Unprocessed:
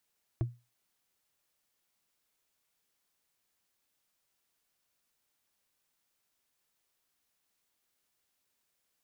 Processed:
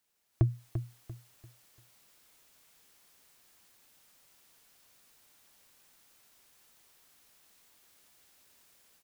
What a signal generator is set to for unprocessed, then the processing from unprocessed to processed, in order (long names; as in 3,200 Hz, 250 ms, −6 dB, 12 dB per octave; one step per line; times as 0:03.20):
struck wood, lowest mode 120 Hz, decay 0.27 s, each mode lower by 7 dB, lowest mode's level −23.5 dB
automatic gain control gain up to 15 dB
on a send: repeating echo 343 ms, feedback 31%, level −9 dB